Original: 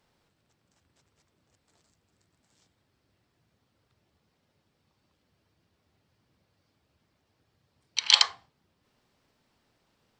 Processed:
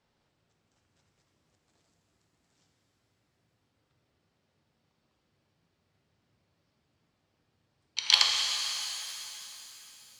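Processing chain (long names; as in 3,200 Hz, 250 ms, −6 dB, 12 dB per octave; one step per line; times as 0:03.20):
harmonic generator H 2 −37 dB, 3 −17 dB, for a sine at −1.5 dBFS
low-pass filter 8,300 Hz 12 dB per octave
reverb with rising layers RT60 3.3 s, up +7 semitones, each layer −8 dB, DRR 1 dB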